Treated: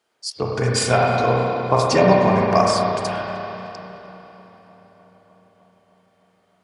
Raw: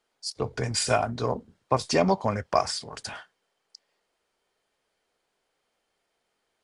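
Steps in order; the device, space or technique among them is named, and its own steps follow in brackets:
high-pass filter 76 Hz
dub delay into a spring reverb (feedback echo with a low-pass in the loop 305 ms, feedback 77%, low-pass 4,300 Hz, level −23.5 dB; spring reverb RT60 3.3 s, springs 32/49 ms, chirp 75 ms, DRR −3 dB)
level +4.5 dB

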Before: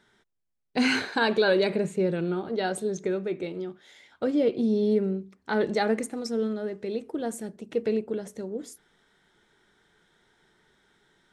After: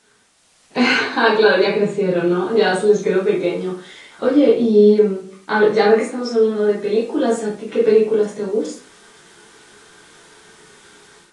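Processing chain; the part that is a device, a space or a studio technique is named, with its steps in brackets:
filmed off a television (band-pass filter 160–6,000 Hz; parametric band 1,100 Hz +6 dB 0.31 octaves; convolution reverb RT60 0.40 s, pre-delay 7 ms, DRR −5.5 dB; white noise bed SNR 35 dB; automatic gain control gain up to 9.5 dB; level −1 dB; AAC 32 kbit/s 22,050 Hz)

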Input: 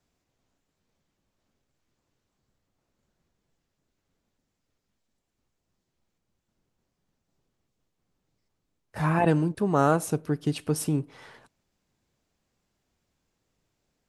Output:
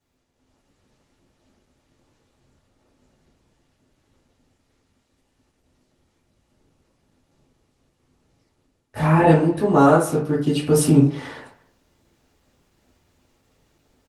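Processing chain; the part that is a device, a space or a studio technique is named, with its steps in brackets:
speakerphone in a meeting room (convolution reverb RT60 0.45 s, pre-delay 3 ms, DRR −6 dB; far-end echo of a speakerphone 250 ms, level −23 dB; automatic gain control gain up to 9.5 dB; level −1 dB; Opus 20 kbit/s 48,000 Hz)

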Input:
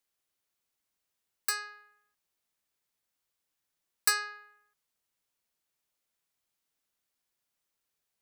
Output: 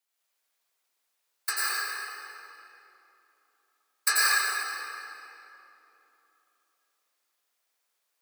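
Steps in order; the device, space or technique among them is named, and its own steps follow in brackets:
whispering ghost (random phases in short frames; high-pass filter 510 Hz 12 dB per octave; convolution reverb RT60 3.2 s, pre-delay 83 ms, DRR −7 dB)

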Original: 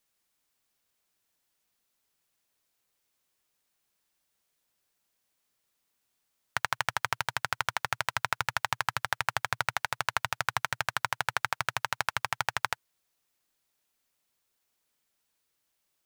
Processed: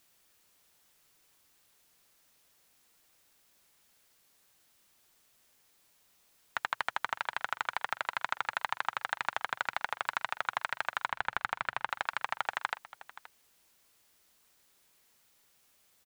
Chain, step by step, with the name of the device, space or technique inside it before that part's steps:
tape answering machine (band-pass filter 390–3,000 Hz; soft clipping −14.5 dBFS, distortion −14 dB; tape wow and flutter; white noise bed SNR 28 dB)
0:11.08–0:11.90: bass and treble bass +9 dB, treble −7 dB
single-tap delay 525 ms −17 dB

